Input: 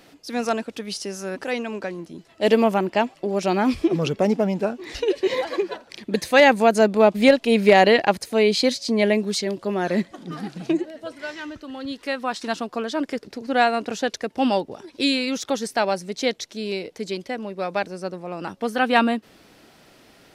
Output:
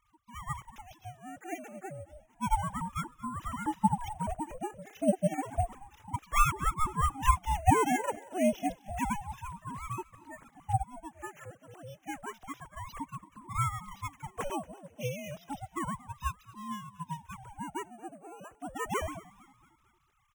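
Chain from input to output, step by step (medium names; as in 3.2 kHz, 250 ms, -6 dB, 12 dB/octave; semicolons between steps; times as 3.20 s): formants replaced by sine waves; sample-and-hold 5×; on a send: feedback delay 228 ms, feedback 48%, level -20.5 dB; on the sum: ring modulator with a swept carrier 410 Hz, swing 55%, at 0.3 Hz; trim -9 dB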